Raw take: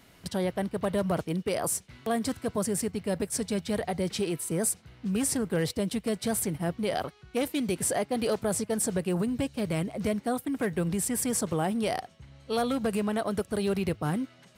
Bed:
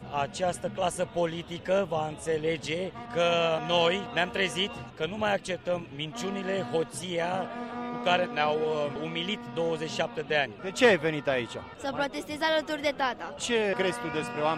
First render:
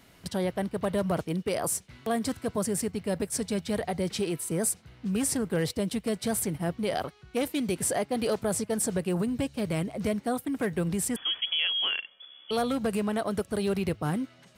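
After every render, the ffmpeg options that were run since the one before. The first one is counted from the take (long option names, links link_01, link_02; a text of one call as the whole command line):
ffmpeg -i in.wav -filter_complex "[0:a]asettb=1/sr,asplit=3[link_01][link_02][link_03];[link_01]atrim=end=11.164[link_04];[link_02]atrim=start=11.16:end=12.51,asetpts=PTS-STARTPTS,afade=type=in:duration=0.004:curve=qsin,afade=type=out:start_time=1.346:duration=0.004:curve=qsin,lowpass=frequency=3000:width_type=q:width=0.5098,lowpass=frequency=3000:width_type=q:width=0.6013,lowpass=frequency=3000:width_type=q:width=0.9,lowpass=frequency=3000:width_type=q:width=2.563,afreqshift=-3500[link_05];[link_03]atrim=start=12.506[link_06];[link_04][link_05]acrossfade=duration=0.004:curve1=hsin:curve2=qsin[link_07];[link_07][link_06]acrossfade=duration=0.004:curve1=qsin:curve2=hsin" out.wav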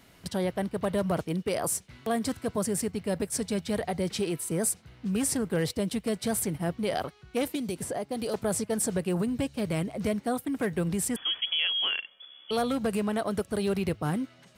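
ffmpeg -i in.wav -filter_complex "[0:a]asettb=1/sr,asplit=3[link_01][link_02][link_03];[link_01]atrim=end=7.554[link_04];[link_02]atrim=start=7.55:end=8.34,asetpts=PTS-STARTPTS,afade=type=in:duration=0.004:curve=qsin,afade=type=out:start_time=0.786:duration=0.004:curve=qsin,acrossover=split=1200|3300[link_05][link_06][link_07];[link_05]acompressor=threshold=-30dB:ratio=4[link_08];[link_06]acompressor=threshold=-52dB:ratio=4[link_09];[link_07]acompressor=threshold=-39dB:ratio=4[link_10];[link_08][link_09][link_10]amix=inputs=3:normalize=0[link_11];[link_03]atrim=start=8.336[link_12];[link_04][link_11]acrossfade=duration=0.004:curve1=hsin:curve2=qsin[link_13];[link_13][link_12]acrossfade=duration=0.004:curve1=qsin:curve2=hsin" out.wav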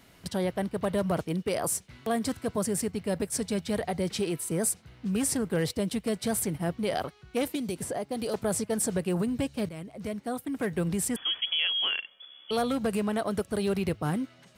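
ffmpeg -i in.wav -filter_complex "[0:a]asplit=2[link_01][link_02];[link_01]atrim=end=9.69,asetpts=PTS-STARTPTS,afade=type=out:start_time=9.686:duration=0.004:curve=hsin:silence=0.223872[link_03];[link_02]atrim=start=9.69,asetpts=PTS-STARTPTS,afade=type=in:duration=1.14:silence=0.223872[link_04];[link_03][link_04]concat=n=2:v=0:a=1" out.wav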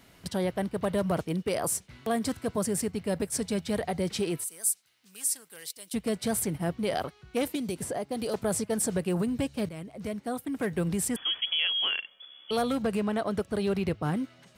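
ffmpeg -i in.wav -filter_complex "[0:a]asettb=1/sr,asplit=3[link_01][link_02][link_03];[link_01]atrim=end=4.444[link_04];[link_02]atrim=start=4.44:end=5.94,asetpts=PTS-STARTPTS,afade=type=in:duration=0.004:curve=qsin,afade=type=out:start_time=1.496:duration=0.004:curve=qsin,aderivative[link_05];[link_03]atrim=start=5.936[link_06];[link_04][link_05]acrossfade=duration=0.004:curve1=hsin:curve2=qsin[link_07];[link_07][link_06]acrossfade=duration=0.004:curve1=qsin:curve2=hsin,asettb=1/sr,asplit=3[link_08][link_09][link_10];[link_08]atrim=end=12.824[link_11];[link_09]atrim=start=12.82:end=14.17,asetpts=PTS-STARTPTS,afade=type=in:duration=0.004:curve=qsin,afade=type=out:start_time=1.346:duration=0.004:curve=qsin,equalizer=frequency=12000:width_type=o:width=1.3:gain=-8[link_12];[link_10]atrim=start=14.166[link_13];[link_11][link_12]acrossfade=duration=0.004:curve1=hsin:curve2=qsin[link_14];[link_14][link_13]acrossfade=duration=0.004:curve1=qsin:curve2=hsin" out.wav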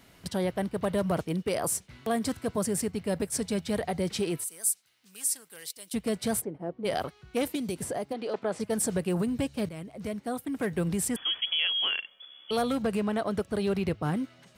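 ffmpeg -i in.wav -filter_complex "[0:a]asplit=3[link_01][link_02][link_03];[link_01]afade=type=out:start_time=6.4:duration=0.02[link_04];[link_02]bandpass=frequency=450:width_type=q:width=1.4,afade=type=in:start_time=6.4:duration=0.02,afade=type=out:start_time=6.84:duration=0.02[link_05];[link_03]afade=type=in:start_time=6.84:duration=0.02[link_06];[link_04][link_05][link_06]amix=inputs=3:normalize=0,asplit=3[link_07][link_08][link_09];[link_07]afade=type=out:start_time=8.12:duration=0.02[link_10];[link_08]highpass=280,lowpass=3300,afade=type=in:start_time=8.12:duration=0.02,afade=type=out:start_time=8.59:duration=0.02[link_11];[link_09]afade=type=in:start_time=8.59:duration=0.02[link_12];[link_10][link_11][link_12]amix=inputs=3:normalize=0" out.wav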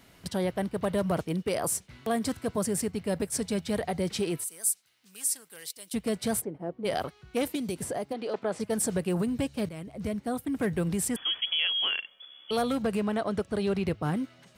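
ffmpeg -i in.wav -filter_complex "[0:a]asettb=1/sr,asplit=3[link_01][link_02][link_03];[link_01]atrim=end=9.874[link_04];[link_02]atrim=start=9.87:end=10.77,asetpts=PTS-STARTPTS,afade=type=in:duration=0.004:curve=qsin,afade=type=out:start_time=0.896:duration=0.004:curve=qsin,lowshelf=frequency=150:gain=9.5[link_05];[link_03]atrim=start=10.766[link_06];[link_04][link_05]acrossfade=duration=0.004:curve1=hsin:curve2=qsin[link_07];[link_07][link_06]acrossfade=duration=0.004:curve1=qsin:curve2=hsin,asettb=1/sr,asplit=3[link_08][link_09][link_10];[link_08]atrim=end=13.174[link_11];[link_09]atrim=start=13.17:end=13.86,asetpts=PTS-STARTPTS,afade=type=in:duration=0.004:curve=qsin,afade=type=out:start_time=0.686:duration=0.004:curve=qsin,equalizer=frequency=13000:width=2.1:gain=-11[link_12];[link_10]atrim=start=13.856[link_13];[link_11][link_12]acrossfade=duration=0.004:curve1=hsin:curve2=qsin[link_14];[link_14][link_13]acrossfade=duration=0.004:curve1=qsin:curve2=hsin" out.wav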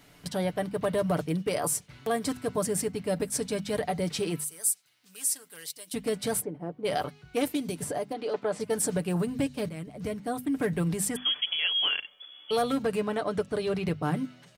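ffmpeg -i in.wav -af "bandreject=frequency=50:width_type=h:width=6,bandreject=frequency=100:width_type=h:width=6,bandreject=frequency=150:width_type=h:width=6,bandreject=frequency=200:width_type=h:width=6,bandreject=frequency=250:width_type=h:width=6,aecho=1:1:6.8:0.47" out.wav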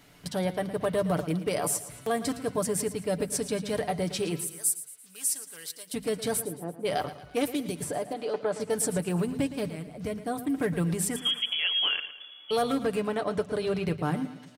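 ffmpeg -i in.wav -af "aecho=1:1:113|226|339|452:0.2|0.0918|0.0422|0.0194" out.wav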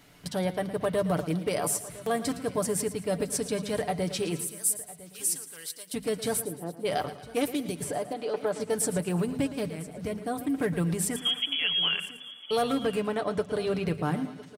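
ffmpeg -i in.wav -af "aecho=1:1:1005:0.112" out.wav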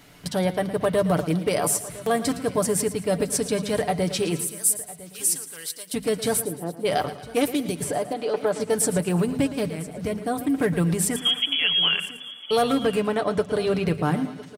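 ffmpeg -i in.wav -af "volume=5.5dB" out.wav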